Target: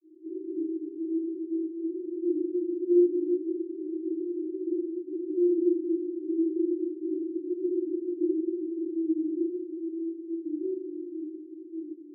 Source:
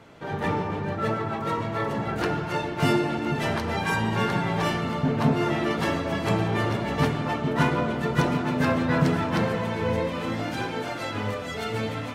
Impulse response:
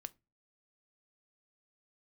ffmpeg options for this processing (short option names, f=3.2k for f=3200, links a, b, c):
-filter_complex "[0:a]asuperpass=centerf=340:order=20:qfactor=3.9,asplit=2[a][b];[1:a]atrim=start_sample=2205,adelay=22[c];[b][c]afir=irnorm=-1:irlink=0,volume=8dB[d];[a][d]amix=inputs=2:normalize=0,volume=2.5dB"